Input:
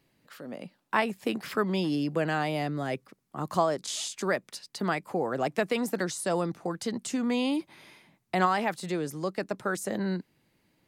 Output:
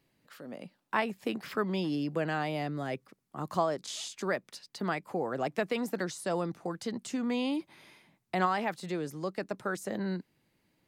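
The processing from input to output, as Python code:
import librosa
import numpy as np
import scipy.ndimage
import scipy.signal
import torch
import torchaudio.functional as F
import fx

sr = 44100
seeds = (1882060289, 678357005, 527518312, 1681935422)

y = fx.dynamic_eq(x, sr, hz=9700.0, q=0.88, threshold_db=-53.0, ratio=4.0, max_db=-5)
y = y * librosa.db_to_amplitude(-3.5)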